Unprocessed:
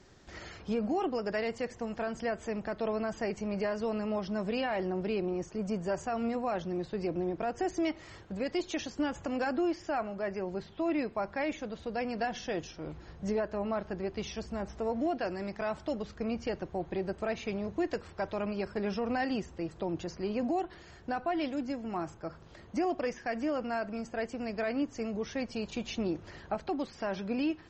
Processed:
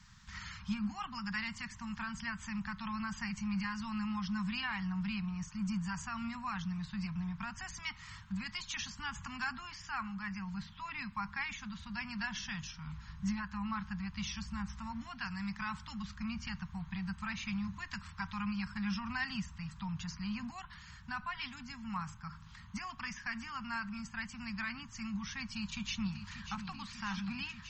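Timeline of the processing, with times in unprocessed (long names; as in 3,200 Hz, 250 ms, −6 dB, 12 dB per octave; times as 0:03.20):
0:25.53–0:26.70: delay throw 590 ms, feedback 85%, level −9.5 dB
whole clip: elliptic band-stop filter 200–1,000 Hz, stop band 40 dB; level +2 dB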